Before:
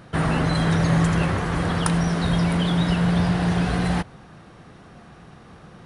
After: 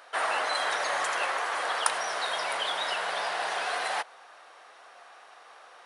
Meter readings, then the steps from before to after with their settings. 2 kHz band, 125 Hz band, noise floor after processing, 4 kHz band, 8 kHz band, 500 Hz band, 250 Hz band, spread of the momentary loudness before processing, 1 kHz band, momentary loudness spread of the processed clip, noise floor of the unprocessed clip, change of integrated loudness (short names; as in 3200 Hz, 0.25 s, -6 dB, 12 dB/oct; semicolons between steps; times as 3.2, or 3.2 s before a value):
0.0 dB, under -40 dB, -53 dBFS, 0.0 dB, 0.0 dB, -5.5 dB, -33.0 dB, 4 LU, -0.5 dB, 3 LU, -47 dBFS, -7.5 dB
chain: HPF 610 Hz 24 dB/oct